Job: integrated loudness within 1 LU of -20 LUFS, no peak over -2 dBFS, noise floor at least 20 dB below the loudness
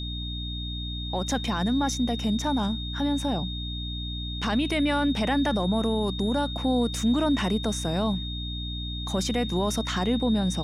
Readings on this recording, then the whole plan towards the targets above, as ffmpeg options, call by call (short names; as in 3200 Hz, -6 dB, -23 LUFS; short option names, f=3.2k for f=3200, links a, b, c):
hum 60 Hz; harmonics up to 300 Hz; hum level -31 dBFS; steady tone 3700 Hz; tone level -35 dBFS; loudness -27.0 LUFS; peak -14.0 dBFS; loudness target -20.0 LUFS
-> -af "bandreject=f=60:t=h:w=6,bandreject=f=120:t=h:w=6,bandreject=f=180:t=h:w=6,bandreject=f=240:t=h:w=6,bandreject=f=300:t=h:w=6"
-af "bandreject=f=3.7k:w=30"
-af "volume=7dB"